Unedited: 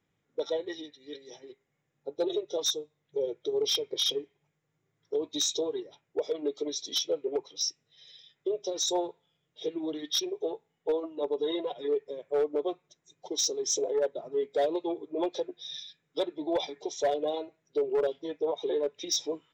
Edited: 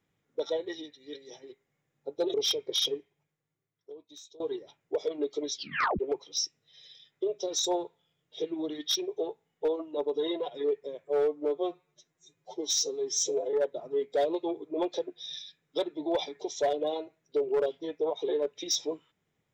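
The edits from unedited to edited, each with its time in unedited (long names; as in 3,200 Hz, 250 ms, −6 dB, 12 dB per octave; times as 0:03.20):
0:02.34–0:03.58: remove
0:04.15–0:05.64: fade out quadratic, to −23 dB
0:06.77: tape stop 0.46 s
0:12.28–0:13.94: time-stretch 1.5×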